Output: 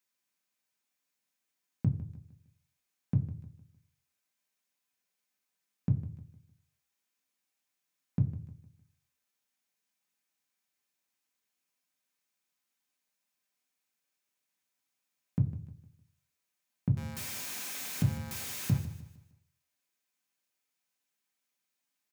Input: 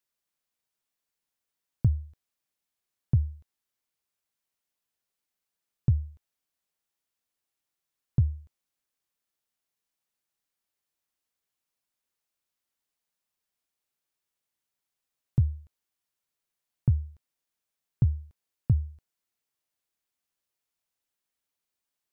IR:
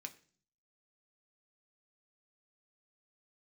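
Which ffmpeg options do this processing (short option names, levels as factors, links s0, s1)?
-filter_complex "[0:a]asettb=1/sr,asplit=3[s0][s1][s2];[s0]atrim=end=16.974[s3];[s1]atrim=start=16.97:end=18.78,asetpts=PTS-STARTPTS,afade=t=in:d=0.004:c=qsin,afade=t=out:st=1.806:d=0.004:c=qsin,aeval=exprs='val(0)+0.5*0.02*sgn(val(0))':c=same[s4];[s2]atrim=start=18.776[s5];[s3][s4]acrossfade=d=0.004:c1=hsin:c2=qsin[s6];[s6][s5]acrossfade=d=0.004:c1=qsin:c2=hsin,aecho=1:1:153|306|459|612:0.211|0.0782|0.0289|0.0107[s7];[1:a]atrim=start_sample=2205,afade=t=out:st=0.35:d=0.01,atrim=end_sample=15876[s8];[s7][s8]afir=irnorm=-1:irlink=0,volume=2.11"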